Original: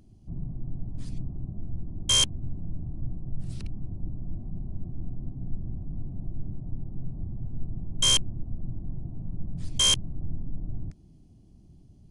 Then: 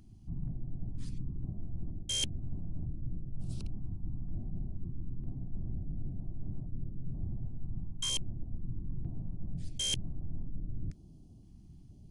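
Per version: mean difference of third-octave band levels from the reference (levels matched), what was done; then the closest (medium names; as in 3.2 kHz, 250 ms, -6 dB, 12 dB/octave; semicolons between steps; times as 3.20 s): 2.5 dB: reverse; compression 6:1, threshold -31 dBFS, peak gain reduction 12.5 dB; reverse; step-sequenced notch 2.1 Hz 510–3200 Hz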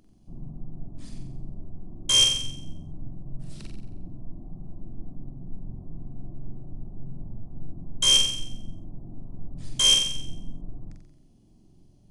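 3.5 dB: peaking EQ 77 Hz -11 dB 2.5 oct; flutter echo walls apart 7.7 m, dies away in 0.7 s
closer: first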